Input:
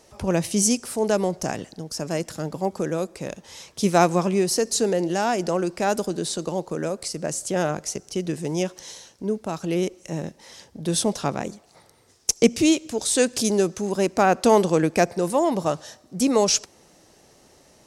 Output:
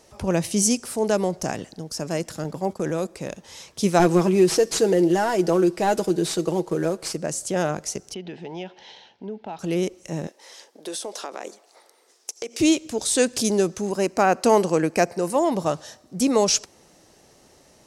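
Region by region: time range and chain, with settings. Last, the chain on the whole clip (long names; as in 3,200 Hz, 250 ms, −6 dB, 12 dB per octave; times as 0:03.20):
0:02.44–0:03.07: downward expander −31 dBFS + transient designer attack −1 dB, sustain +6 dB
0:03.99–0:07.16: variable-slope delta modulation 64 kbit/s + parametric band 380 Hz +8 dB 0.34 octaves + comb filter 6.2 ms, depth 52%
0:08.14–0:09.59: loudspeaker in its box 150–3,700 Hz, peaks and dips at 150 Hz −8 dB, 300 Hz −8 dB, 530 Hz −5 dB, 830 Hz +8 dB, 1,200 Hz −7 dB, 3,100 Hz +4 dB + notch filter 1,100 Hz, Q 14 + downward compressor 2 to 1, threshold −33 dBFS
0:10.27–0:12.60: high-pass filter 350 Hz 24 dB per octave + downward compressor 12 to 1, threshold −27 dBFS
0:13.91–0:15.36: low-shelf EQ 130 Hz −8 dB + notch filter 3,500 Hz, Q 5.6
whole clip: no processing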